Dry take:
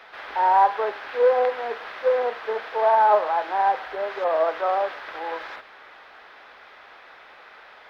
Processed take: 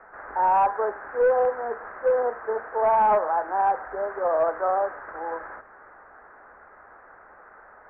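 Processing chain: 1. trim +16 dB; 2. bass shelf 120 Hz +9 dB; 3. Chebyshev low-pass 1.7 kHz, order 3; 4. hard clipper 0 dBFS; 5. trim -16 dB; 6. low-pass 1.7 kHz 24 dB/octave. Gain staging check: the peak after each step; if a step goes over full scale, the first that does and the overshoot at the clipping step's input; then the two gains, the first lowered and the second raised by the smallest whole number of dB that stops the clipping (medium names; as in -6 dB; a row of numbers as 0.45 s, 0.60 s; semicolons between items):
+8.0 dBFS, +8.5 dBFS, +7.5 dBFS, 0.0 dBFS, -16.0 dBFS, -14.5 dBFS; step 1, 7.5 dB; step 1 +8 dB, step 5 -8 dB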